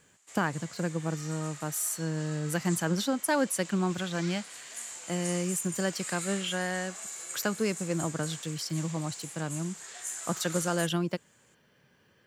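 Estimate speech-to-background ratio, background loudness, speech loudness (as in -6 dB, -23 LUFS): 8.0 dB, -40.0 LUFS, -32.0 LUFS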